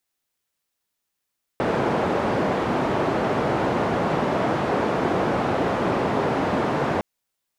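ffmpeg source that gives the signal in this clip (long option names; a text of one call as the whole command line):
ffmpeg -f lavfi -i "anoisesrc=color=white:duration=5.41:sample_rate=44100:seed=1,highpass=frequency=120,lowpass=frequency=730,volume=-2.6dB" out.wav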